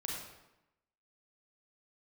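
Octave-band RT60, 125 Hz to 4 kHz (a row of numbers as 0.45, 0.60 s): 0.95, 1.0, 0.90, 0.95, 0.85, 0.70 s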